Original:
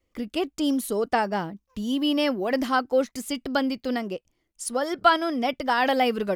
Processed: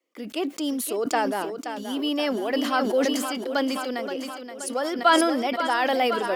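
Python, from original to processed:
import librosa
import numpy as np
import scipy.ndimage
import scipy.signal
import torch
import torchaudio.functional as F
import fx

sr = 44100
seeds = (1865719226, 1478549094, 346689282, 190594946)

p1 = scipy.signal.sosfilt(scipy.signal.butter(4, 270.0, 'highpass', fs=sr, output='sos'), x)
p2 = p1 + fx.echo_feedback(p1, sr, ms=525, feedback_pct=55, wet_db=-9.5, dry=0)
p3 = fx.sustainer(p2, sr, db_per_s=34.0)
y = p3 * librosa.db_to_amplitude(-1.5)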